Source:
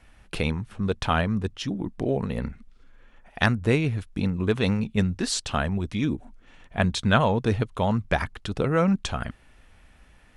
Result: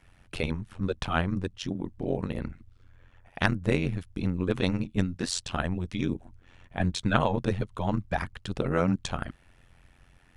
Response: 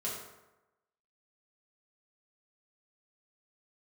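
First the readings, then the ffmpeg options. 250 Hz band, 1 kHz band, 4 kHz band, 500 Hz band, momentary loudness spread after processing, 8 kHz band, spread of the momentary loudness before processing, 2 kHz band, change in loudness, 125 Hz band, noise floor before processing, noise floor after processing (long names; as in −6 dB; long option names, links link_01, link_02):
−4.0 dB, −4.5 dB, −4.5 dB, −4.5 dB, 10 LU, −4.0 dB, 10 LU, −4.5 dB, −4.0 dB, −4.5 dB, −55 dBFS, −60 dBFS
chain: -af "tremolo=f=89:d=0.919"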